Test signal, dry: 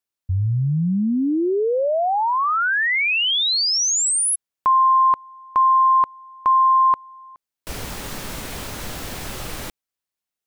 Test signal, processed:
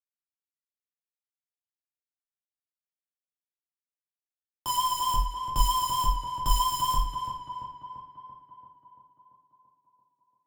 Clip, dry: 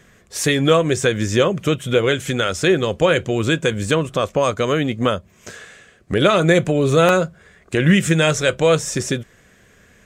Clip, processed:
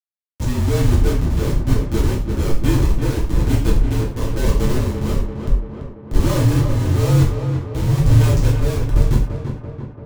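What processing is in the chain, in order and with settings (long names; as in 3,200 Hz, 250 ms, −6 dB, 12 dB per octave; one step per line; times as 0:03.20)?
notch filter 4,500 Hz, Q 11
pitch vibrato 4.4 Hz 41 cents
comparator with hysteresis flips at −16.5 dBFS
reverb whose tail is shaped and stops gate 140 ms falling, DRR −3.5 dB
amplitude tremolo 1.1 Hz, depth 43%
high-shelf EQ 4,700 Hz −11 dB
tape delay 339 ms, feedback 70%, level −5 dB, low-pass 2,100 Hz
frequency shifter −46 Hz
bass and treble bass +14 dB, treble +12 dB
level −9.5 dB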